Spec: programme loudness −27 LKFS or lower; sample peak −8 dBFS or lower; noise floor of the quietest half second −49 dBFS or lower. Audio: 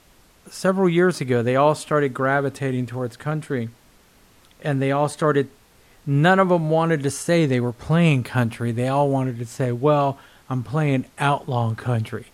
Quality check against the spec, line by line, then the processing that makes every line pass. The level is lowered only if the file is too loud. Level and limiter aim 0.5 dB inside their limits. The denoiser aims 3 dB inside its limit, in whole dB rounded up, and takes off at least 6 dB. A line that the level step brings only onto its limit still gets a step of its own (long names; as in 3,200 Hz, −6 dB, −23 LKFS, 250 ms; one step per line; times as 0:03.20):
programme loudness −21.5 LKFS: out of spec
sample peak −4.5 dBFS: out of spec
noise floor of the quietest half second −54 dBFS: in spec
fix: level −6 dB